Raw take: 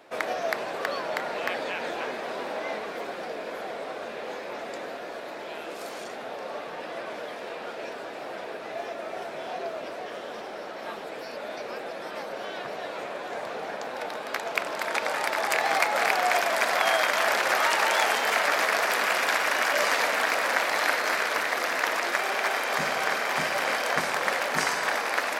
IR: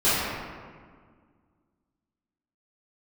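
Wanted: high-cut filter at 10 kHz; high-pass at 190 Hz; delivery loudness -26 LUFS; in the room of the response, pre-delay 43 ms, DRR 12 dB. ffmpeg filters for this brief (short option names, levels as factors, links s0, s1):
-filter_complex "[0:a]highpass=190,lowpass=10000,asplit=2[s0][s1];[1:a]atrim=start_sample=2205,adelay=43[s2];[s1][s2]afir=irnorm=-1:irlink=0,volume=0.0316[s3];[s0][s3]amix=inputs=2:normalize=0,volume=1.19"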